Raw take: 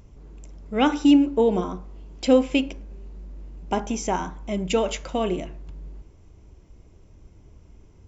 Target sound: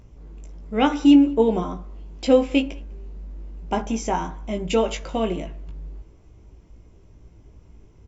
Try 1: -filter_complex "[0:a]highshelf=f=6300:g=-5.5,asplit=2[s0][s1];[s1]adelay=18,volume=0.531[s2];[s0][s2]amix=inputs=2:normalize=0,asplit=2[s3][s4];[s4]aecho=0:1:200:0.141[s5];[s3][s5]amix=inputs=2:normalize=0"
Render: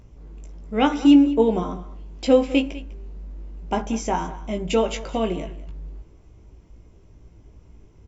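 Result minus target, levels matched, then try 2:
echo-to-direct +11 dB
-filter_complex "[0:a]highshelf=f=6300:g=-5.5,asplit=2[s0][s1];[s1]adelay=18,volume=0.531[s2];[s0][s2]amix=inputs=2:normalize=0,asplit=2[s3][s4];[s4]aecho=0:1:200:0.0398[s5];[s3][s5]amix=inputs=2:normalize=0"

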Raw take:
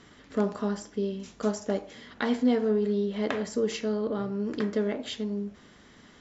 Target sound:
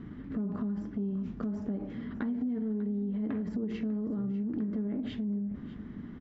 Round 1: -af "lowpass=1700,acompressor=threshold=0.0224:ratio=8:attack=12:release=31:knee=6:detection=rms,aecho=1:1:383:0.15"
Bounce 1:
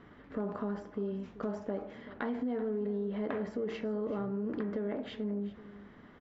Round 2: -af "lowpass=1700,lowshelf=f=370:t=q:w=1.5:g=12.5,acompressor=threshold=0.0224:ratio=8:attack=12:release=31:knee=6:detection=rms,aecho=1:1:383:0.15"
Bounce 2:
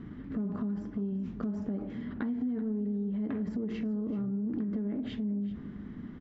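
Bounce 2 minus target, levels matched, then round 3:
echo 213 ms early
-af "lowpass=1700,lowshelf=f=370:t=q:w=1.5:g=12.5,acompressor=threshold=0.0224:ratio=8:attack=12:release=31:knee=6:detection=rms,aecho=1:1:596:0.15"

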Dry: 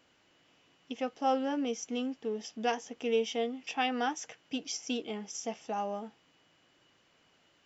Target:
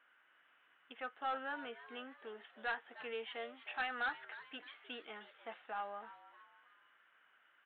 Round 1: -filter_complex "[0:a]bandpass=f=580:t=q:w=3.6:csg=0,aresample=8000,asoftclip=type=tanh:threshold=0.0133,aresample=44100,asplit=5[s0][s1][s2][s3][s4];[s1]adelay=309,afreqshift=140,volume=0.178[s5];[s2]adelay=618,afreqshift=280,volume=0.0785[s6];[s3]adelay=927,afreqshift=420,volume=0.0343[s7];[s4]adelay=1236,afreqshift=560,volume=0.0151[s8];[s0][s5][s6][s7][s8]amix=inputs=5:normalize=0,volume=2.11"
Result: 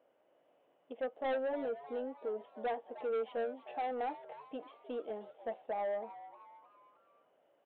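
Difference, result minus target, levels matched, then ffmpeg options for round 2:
2 kHz band -12.5 dB
-filter_complex "[0:a]bandpass=f=1500:t=q:w=3.6:csg=0,aresample=8000,asoftclip=type=tanh:threshold=0.0133,aresample=44100,asplit=5[s0][s1][s2][s3][s4];[s1]adelay=309,afreqshift=140,volume=0.178[s5];[s2]adelay=618,afreqshift=280,volume=0.0785[s6];[s3]adelay=927,afreqshift=420,volume=0.0343[s7];[s4]adelay=1236,afreqshift=560,volume=0.0151[s8];[s0][s5][s6][s7][s8]amix=inputs=5:normalize=0,volume=2.11"

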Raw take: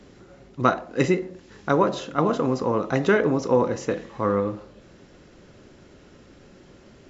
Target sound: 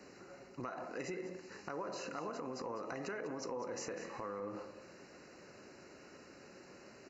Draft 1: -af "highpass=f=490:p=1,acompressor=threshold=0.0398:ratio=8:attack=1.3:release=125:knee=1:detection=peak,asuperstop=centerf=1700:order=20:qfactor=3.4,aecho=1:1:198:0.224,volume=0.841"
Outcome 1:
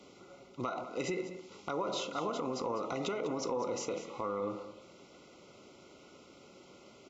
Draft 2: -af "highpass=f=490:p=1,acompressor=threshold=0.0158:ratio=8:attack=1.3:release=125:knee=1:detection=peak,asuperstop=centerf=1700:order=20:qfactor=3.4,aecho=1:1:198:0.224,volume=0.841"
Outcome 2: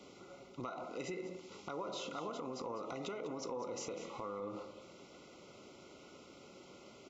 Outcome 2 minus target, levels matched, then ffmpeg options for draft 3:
2 kHz band -4.5 dB
-af "highpass=f=490:p=1,acompressor=threshold=0.0158:ratio=8:attack=1.3:release=125:knee=1:detection=peak,asuperstop=centerf=3400:order=20:qfactor=3.4,aecho=1:1:198:0.224,volume=0.841"

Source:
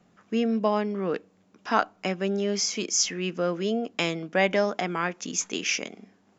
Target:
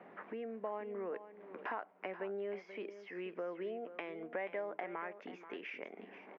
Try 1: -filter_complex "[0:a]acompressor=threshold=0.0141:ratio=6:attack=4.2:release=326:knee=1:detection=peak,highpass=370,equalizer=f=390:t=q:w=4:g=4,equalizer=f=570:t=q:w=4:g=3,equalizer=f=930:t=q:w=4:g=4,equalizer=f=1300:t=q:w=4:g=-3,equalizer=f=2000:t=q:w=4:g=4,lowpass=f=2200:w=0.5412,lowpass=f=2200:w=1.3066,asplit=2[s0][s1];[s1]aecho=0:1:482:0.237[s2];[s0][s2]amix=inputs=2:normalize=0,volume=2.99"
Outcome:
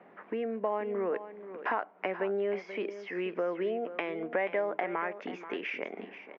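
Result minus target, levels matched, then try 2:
compression: peak gain reduction -9.5 dB
-filter_complex "[0:a]acompressor=threshold=0.00376:ratio=6:attack=4.2:release=326:knee=1:detection=peak,highpass=370,equalizer=f=390:t=q:w=4:g=4,equalizer=f=570:t=q:w=4:g=3,equalizer=f=930:t=q:w=4:g=4,equalizer=f=1300:t=q:w=4:g=-3,equalizer=f=2000:t=q:w=4:g=4,lowpass=f=2200:w=0.5412,lowpass=f=2200:w=1.3066,asplit=2[s0][s1];[s1]aecho=0:1:482:0.237[s2];[s0][s2]amix=inputs=2:normalize=0,volume=2.99"

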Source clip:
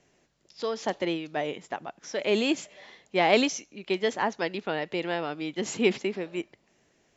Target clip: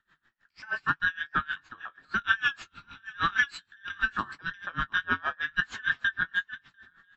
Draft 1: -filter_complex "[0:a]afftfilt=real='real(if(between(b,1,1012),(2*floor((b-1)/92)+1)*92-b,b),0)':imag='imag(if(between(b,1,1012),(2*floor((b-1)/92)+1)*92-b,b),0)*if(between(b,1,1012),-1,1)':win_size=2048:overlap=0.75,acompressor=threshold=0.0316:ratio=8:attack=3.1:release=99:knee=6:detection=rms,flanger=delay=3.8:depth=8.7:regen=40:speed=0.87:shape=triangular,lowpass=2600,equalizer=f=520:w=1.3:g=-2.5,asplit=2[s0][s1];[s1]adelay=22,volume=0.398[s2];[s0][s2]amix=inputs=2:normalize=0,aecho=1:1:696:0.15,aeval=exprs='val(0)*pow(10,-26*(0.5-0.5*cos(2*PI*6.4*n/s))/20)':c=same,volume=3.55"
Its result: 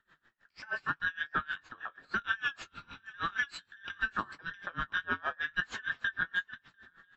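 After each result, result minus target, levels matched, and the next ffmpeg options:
compression: peak gain reduction +9 dB; 500 Hz band +5.5 dB
-filter_complex "[0:a]afftfilt=real='real(if(between(b,1,1012),(2*floor((b-1)/92)+1)*92-b,b),0)':imag='imag(if(between(b,1,1012),(2*floor((b-1)/92)+1)*92-b,b),0)*if(between(b,1,1012),-1,1)':win_size=2048:overlap=0.75,acompressor=threshold=0.1:ratio=8:attack=3.1:release=99:knee=6:detection=rms,flanger=delay=3.8:depth=8.7:regen=40:speed=0.87:shape=triangular,lowpass=2600,equalizer=f=520:w=1.3:g=-2.5,asplit=2[s0][s1];[s1]adelay=22,volume=0.398[s2];[s0][s2]amix=inputs=2:normalize=0,aecho=1:1:696:0.15,aeval=exprs='val(0)*pow(10,-26*(0.5-0.5*cos(2*PI*6.4*n/s))/20)':c=same,volume=3.55"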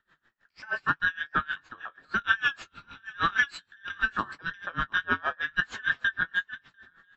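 500 Hz band +4.5 dB
-filter_complex "[0:a]afftfilt=real='real(if(between(b,1,1012),(2*floor((b-1)/92)+1)*92-b,b),0)':imag='imag(if(between(b,1,1012),(2*floor((b-1)/92)+1)*92-b,b),0)*if(between(b,1,1012),-1,1)':win_size=2048:overlap=0.75,acompressor=threshold=0.1:ratio=8:attack=3.1:release=99:knee=6:detection=rms,flanger=delay=3.8:depth=8.7:regen=40:speed=0.87:shape=triangular,lowpass=2600,equalizer=f=520:w=1.3:g=-9.5,asplit=2[s0][s1];[s1]adelay=22,volume=0.398[s2];[s0][s2]amix=inputs=2:normalize=0,aecho=1:1:696:0.15,aeval=exprs='val(0)*pow(10,-26*(0.5-0.5*cos(2*PI*6.4*n/s))/20)':c=same,volume=3.55"

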